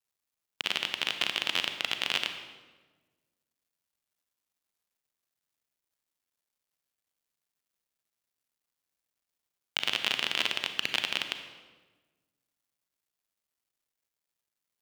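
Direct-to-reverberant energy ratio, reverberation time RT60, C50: 7.0 dB, 1.3 s, 7.5 dB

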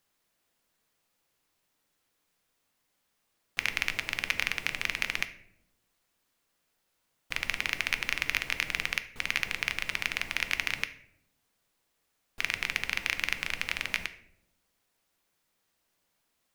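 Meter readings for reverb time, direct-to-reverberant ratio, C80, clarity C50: no single decay rate, 9.5 dB, 17.0 dB, 13.5 dB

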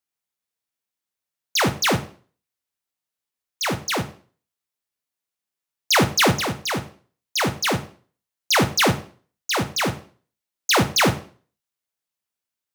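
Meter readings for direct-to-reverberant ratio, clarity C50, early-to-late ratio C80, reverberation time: 7.5 dB, 13.0 dB, 17.5 dB, 0.40 s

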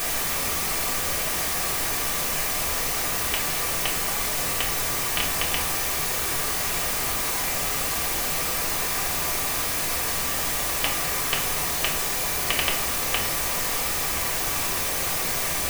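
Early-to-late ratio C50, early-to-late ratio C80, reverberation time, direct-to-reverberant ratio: 7.5 dB, 11.0 dB, 0.60 s, -3.5 dB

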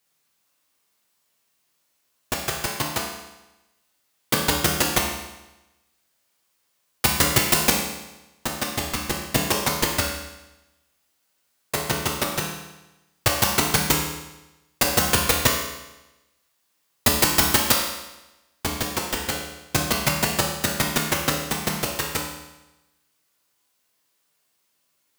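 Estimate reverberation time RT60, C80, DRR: 1.0 s, 6.0 dB, -1.5 dB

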